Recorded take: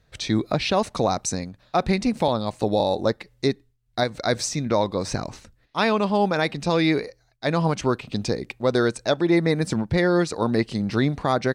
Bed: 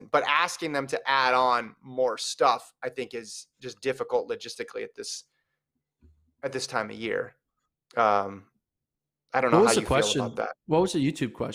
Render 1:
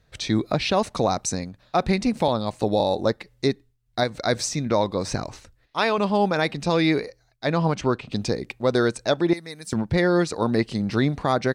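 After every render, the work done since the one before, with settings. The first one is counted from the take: 5.23–5.98 s: peaking EQ 200 Hz -8 dB; 7.46–8.11 s: distance through air 55 m; 9.33–9.73 s: pre-emphasis filter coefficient 0.9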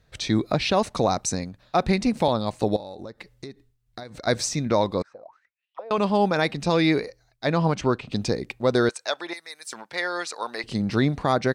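2.76–4.27 s: compression 16:1, threshold -33 dBFS; 5.02–5.91 s: auto-wah 520–3300 Hz, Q 16, down, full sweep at -23 dBFS; 8.89–10.64 s: high-pass 870 Hz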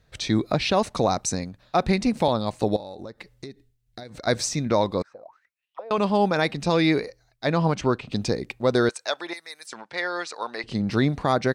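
3.46–4.09 s: peaking EQ 1.1 kHz -9 dB 0.74 oct; 9.66–10.88 s: distance through air 58 m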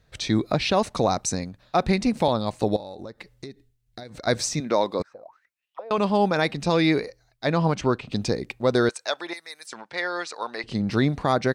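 4.60–5.00 s: high-pass 260 Hz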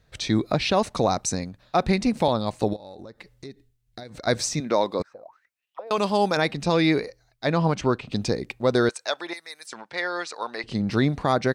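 2.73–3.45 s: compression 2:1, threshold -39 dBFS; 5.87–6.37 s: tone controls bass -5 dB, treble +10 dB; 7.75–9.00 s: short-mantissa float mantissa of 8-bit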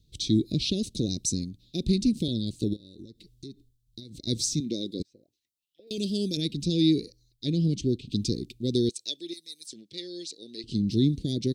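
Chebyshev band-stop 340–3500 Hz, order 3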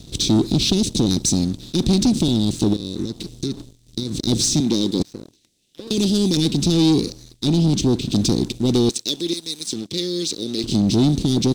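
spectral levelling over time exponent 0.6; waveshaping leveller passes 2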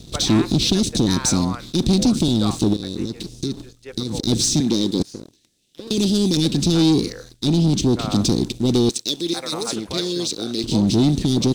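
add bed -9.5 dB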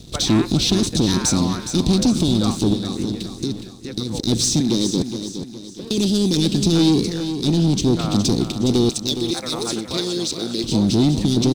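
feedback delay 415 ms, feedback 41%, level -9.5 dB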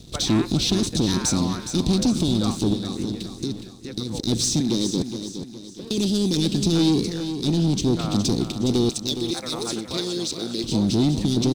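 trim -3.5 dB

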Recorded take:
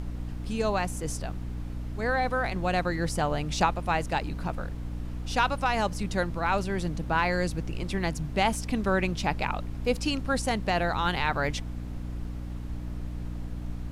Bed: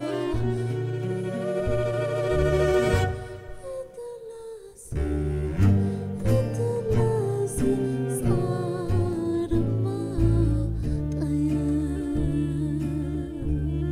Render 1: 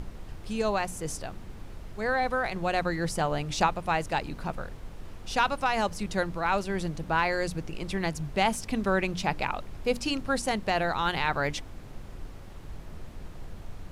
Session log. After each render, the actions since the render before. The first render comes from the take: hum notches 60/120/180/240/300 Hz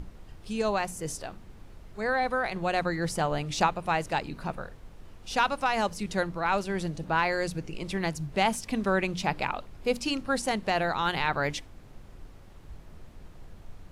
noise print and reduce 6 dB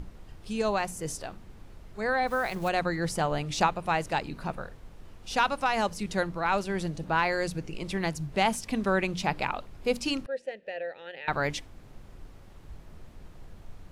2.27–2.69 s: block-companded coder 5-bit; 10.26–11.28 s: vowel filter e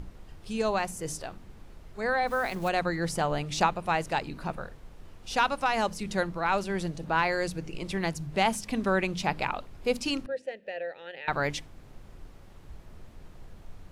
de-hum 51.66 Hz, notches 6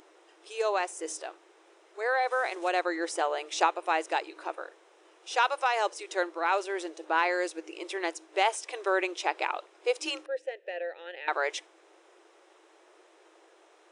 FFT band-pass 310–10000 Hz; band-stop 4.5 kHz, Q 8.2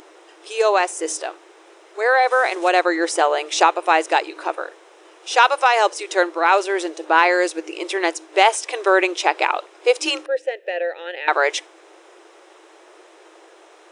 trim +11.5 dB; peak limiter -1 dBFS, peak gain reduction 2.5 dB

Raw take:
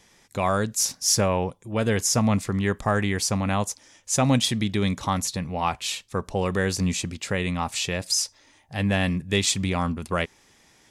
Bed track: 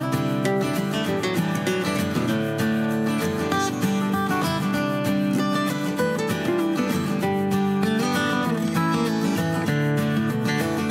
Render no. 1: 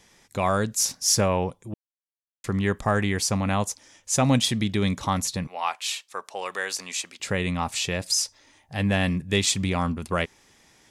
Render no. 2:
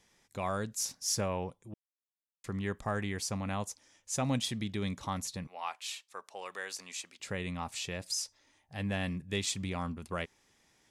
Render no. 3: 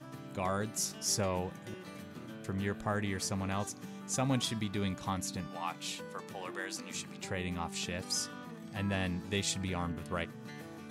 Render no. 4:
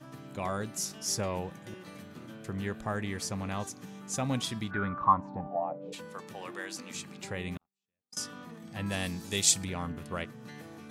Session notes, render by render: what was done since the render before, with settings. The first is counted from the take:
1.74–2.44 s: mute; 5.47–7.20 s: high-pass 770 Hz
trim -11 dB
add bed track -23.5 dB
4.70–5.92 s: resonant low-pass 1.6 kHz -> 480 Hz, resonance Q 11; 7.57–8.17 s: gate -31 dBFS, range -54 dB; 8.86–9.65 s: tone controls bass -1 dB, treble +14 dB

